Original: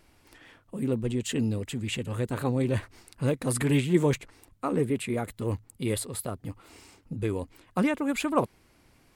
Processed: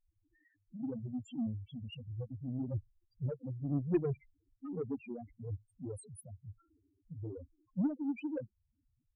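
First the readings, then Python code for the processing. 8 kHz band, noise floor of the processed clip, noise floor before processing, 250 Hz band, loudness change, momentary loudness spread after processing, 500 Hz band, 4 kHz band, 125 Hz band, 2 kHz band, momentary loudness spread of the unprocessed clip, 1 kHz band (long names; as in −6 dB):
−24.0 dB, −80 dBFS, −62 dBFS, −9.5 dB, −10.5 dB, 16 LU, −12.5 dB, below −15 dB, −10.0 dB, −22.5 dB, 11 LU, −21.0 dB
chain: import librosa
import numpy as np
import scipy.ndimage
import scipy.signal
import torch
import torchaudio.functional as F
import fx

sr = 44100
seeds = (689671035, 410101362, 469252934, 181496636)

y = fx.spec_topn(x, sr, count=2)
y = fx.cheby_harmonics(y, sr, harmonics=(2, 7, 8), levels_db=(-27, -26, -43), full_scale_db=-16.0)
y = y * librosa.db_to_amplitude(-4.5)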